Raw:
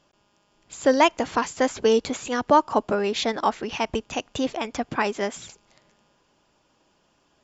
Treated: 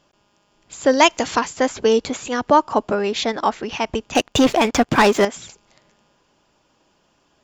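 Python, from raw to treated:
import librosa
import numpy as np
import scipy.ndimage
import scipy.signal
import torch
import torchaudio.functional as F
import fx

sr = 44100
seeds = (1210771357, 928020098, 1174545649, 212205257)

y = fx.high_shelf(x, sr, hz=fx.line((0.98, 3700.0), (1.38, 2500.0)), db=11.0, at=(0.98, 1.38), fade=0.02)
y = fx.leveller(y, sr, passes=3, at=(4.15, 5.25))
y = y * librosa.db_to_amplitude(3.0)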